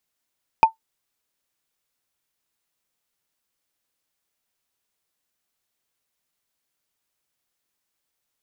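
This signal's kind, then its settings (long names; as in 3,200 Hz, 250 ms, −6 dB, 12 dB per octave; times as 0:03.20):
struck wood, lowest mode 894 Hz, decay 0.12 s, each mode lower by 11 dB, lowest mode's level −4 dB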